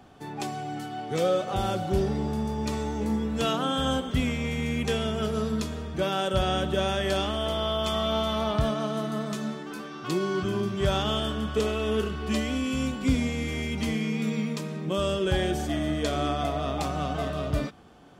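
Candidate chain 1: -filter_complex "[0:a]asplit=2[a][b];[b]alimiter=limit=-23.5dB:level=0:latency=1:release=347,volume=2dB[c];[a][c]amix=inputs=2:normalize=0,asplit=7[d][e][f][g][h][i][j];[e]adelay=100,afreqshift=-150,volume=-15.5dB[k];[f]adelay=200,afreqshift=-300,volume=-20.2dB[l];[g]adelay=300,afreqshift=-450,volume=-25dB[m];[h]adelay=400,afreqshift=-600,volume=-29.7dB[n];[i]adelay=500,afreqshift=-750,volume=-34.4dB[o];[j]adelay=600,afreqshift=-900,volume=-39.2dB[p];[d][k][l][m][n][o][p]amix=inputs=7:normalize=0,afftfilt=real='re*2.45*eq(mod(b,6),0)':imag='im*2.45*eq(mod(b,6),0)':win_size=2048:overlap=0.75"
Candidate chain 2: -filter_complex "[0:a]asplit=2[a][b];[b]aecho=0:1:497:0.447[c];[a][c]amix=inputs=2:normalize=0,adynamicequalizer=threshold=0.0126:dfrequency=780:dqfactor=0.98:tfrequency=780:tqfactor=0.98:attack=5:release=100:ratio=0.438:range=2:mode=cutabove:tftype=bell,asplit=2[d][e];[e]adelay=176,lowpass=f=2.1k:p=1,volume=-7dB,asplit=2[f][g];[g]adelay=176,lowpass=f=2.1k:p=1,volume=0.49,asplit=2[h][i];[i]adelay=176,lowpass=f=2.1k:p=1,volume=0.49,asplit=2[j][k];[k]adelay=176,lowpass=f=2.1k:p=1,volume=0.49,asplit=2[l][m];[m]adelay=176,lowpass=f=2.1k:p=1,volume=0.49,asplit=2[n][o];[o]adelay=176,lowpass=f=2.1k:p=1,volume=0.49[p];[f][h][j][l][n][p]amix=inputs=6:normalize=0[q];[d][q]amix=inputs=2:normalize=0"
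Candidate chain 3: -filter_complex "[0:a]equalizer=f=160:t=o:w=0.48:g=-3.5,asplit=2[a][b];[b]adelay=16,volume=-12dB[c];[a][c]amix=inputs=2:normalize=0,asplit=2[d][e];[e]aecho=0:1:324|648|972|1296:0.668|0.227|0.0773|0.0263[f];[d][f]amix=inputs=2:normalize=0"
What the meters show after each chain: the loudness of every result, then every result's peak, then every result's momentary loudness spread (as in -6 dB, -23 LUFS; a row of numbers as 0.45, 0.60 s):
-26.0, -28.0, -26.5 LUFS; -9.5, -12.0, -10.5 dBFS; 13, 5, 6 LU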